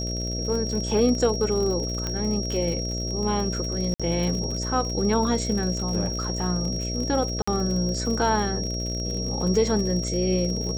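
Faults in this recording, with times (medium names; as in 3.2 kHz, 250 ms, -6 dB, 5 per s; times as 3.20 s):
buzz 60 Hz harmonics 11 -30 dBFS
crackle 62 per s -30 dBFS
whine 5.6 kHz -31 dBFS
2.07 s: pop -15 dBFS
3.94–4.00 s: dropout 56 ms
7.42–7.47 s: dropout 55 ms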